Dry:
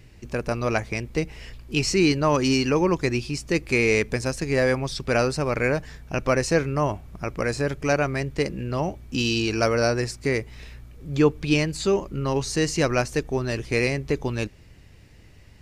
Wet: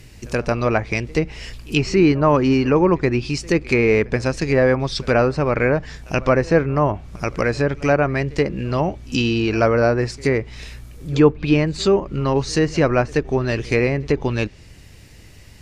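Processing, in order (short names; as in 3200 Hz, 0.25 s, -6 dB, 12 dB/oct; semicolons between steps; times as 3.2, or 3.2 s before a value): treble ducked by the level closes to 1600 Hz, closed at -19 dBFS; high shelf 4400 Hz +9.5 dB; reverse echo 78 ms -24 dB; gain +5.5 dB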